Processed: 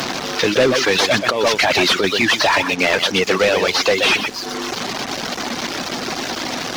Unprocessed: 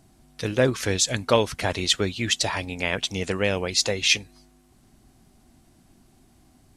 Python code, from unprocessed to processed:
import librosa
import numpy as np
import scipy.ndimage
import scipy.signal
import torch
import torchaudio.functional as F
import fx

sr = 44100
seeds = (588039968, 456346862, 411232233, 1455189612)

p1 = fx.delta_mod(x, sr, bps=32000, step_db=-32.5)
p2 = scipy.signal.sosfilt(scipy.signal.butter(2, 190.0, 'highpass', fs=sr, output='sos'), p1)
p3 = p2 + fx.echo_single(p2, sr, ms=123, db=-6.0, dry=0)
p4 = fx.dereverb_blind(p3, sr, rt60_s=0.98)
p5 = fx.over_compress(p4, sr, threshold_db=-29.0, ratio=-1.0, at=(0.97, 2.04))
p6 = fx.low_shelf(p5, sr, hz=320.0, db=-8.0)
p7 = fx.leveller(p6, sr, passes=3)
p8 = fx.band_squash(p7, sr, depth_pct=40)
y = F.gain(torch.from_numpy(p8), 6.0).numpy()